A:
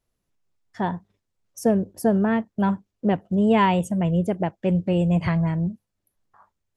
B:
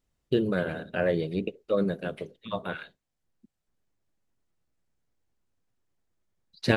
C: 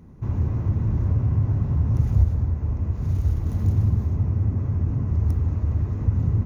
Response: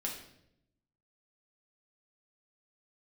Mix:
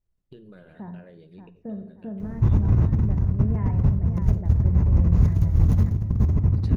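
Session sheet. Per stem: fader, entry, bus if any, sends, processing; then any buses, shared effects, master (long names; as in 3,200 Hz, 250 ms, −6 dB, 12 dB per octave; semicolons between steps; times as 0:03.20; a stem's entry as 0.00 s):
−17.5 dB, 0.00 s, bus A, send −10 dB, echo send −14 dB, Chebyshev low-pass filter 2,100 Hz, order 4; low-shelf EQ 250 Hz +10.5 dB
−15.5 dB, 0.00 s, bus A, send −13 dB, no echo send, downward compressor 3 to 1, threshold −34 dBFS, peak gain reduction 13.5 dB
+0.5 dB, 2.20 s, no bus, send −17 dB, no echo send, compressor whose output falls as the input rises −25 dBFS, ratio −0.5
bus A: 0.0 dB, downward compressor, threshold −43 dBFS, peak gain reduction 14 dB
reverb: on, RT60 0.75 s, pre-delay 5 ms
echo: repeating echo 579 ms, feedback 38%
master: low-shelf EQ 130 Hz +8 dB; level that may fall only so fast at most 130 dB per second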